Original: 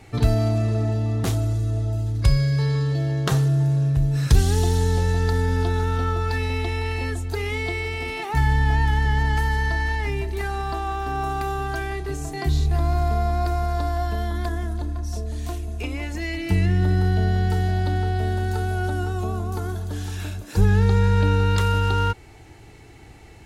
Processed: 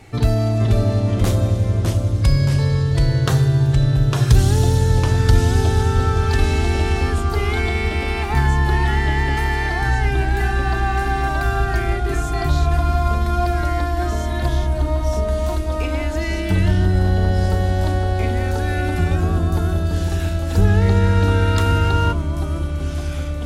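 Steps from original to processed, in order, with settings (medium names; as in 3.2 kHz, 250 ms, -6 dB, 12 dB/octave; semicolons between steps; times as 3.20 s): in parallel at -9 dB: saturation -13 dBFS, distortion -17 dB; on the sum: ever faster or slower copies 454 ms, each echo -2 st, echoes 2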